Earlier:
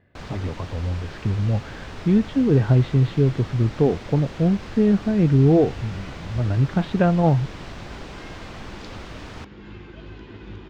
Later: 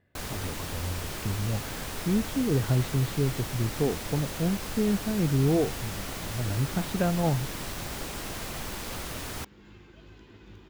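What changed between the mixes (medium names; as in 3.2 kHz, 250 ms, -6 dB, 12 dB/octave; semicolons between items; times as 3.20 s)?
speech -8.5 dB; second sound -11.5 dB; master: remove distance through air 150 m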